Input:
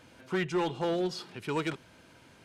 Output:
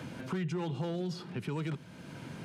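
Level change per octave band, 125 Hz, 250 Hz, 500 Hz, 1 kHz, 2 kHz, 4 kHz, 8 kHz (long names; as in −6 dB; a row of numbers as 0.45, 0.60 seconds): +4.0, −2.5, −7.5, −8.0, −8.0, −7.0, −5.0 decibels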